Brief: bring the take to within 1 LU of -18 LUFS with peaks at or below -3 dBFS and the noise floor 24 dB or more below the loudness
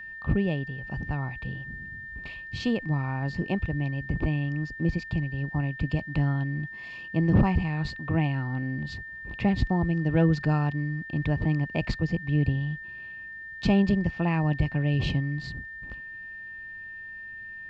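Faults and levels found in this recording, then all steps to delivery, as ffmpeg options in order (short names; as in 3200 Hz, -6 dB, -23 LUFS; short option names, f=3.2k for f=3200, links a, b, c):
steady tone 1800 Hz; tone level -38 dBFS; loudness -28.0 LUFS; peak -10.5 dBFS; loudness target -18.0 LUFS
-> -af "bandreject=f=1.8k:w=30"
-af "volume=10dB,alimiter=limit=-3dB:level=0:latency=1"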